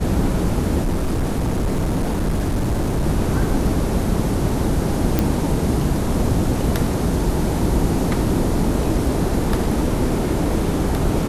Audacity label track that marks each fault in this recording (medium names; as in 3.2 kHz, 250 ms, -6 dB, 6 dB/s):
0.810000	3.070000	clipped -16 dBFS
5.190000	5.190000	pop -4 dBFS